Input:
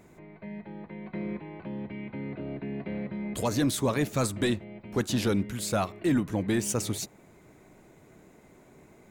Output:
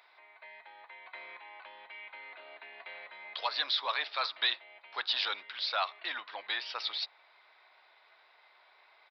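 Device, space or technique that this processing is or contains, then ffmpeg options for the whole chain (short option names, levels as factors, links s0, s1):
musical greeting card: -af "aresample=11025,aresample=44100,highpass=f=850:w=0.5412,highpass=f=850:w=1.3066,equalizer=f=3700:t=o:w=0.53:g=7.5,volume=1.19"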